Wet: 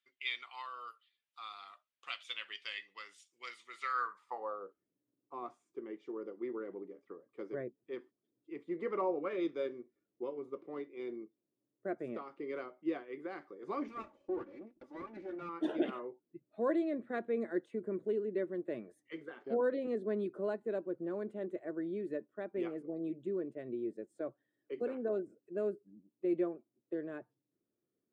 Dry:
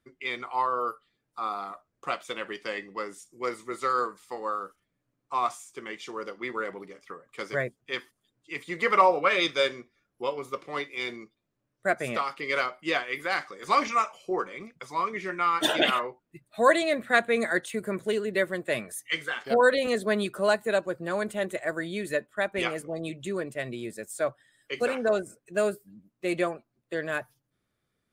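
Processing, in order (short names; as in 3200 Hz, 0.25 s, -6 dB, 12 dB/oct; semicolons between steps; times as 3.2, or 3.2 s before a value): 13.88–15.49 minimum comb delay 3.5 ms; dynamic EQ 610 Hz, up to -4 dB, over -35 dBFS, Q 0.79; band-pass sweep 3100 Hz -> 340 Hz, 3.7–4.78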